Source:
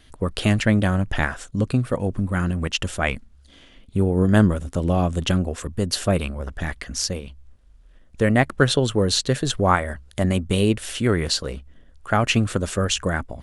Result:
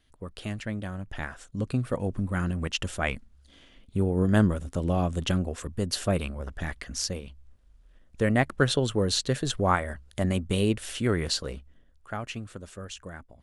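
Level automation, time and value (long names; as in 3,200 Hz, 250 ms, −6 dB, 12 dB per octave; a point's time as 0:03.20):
0:00.97 −15 dB
0:01.88 −5.5 dB
0:11.52 −5.5 dB
0:12.39 −18 dB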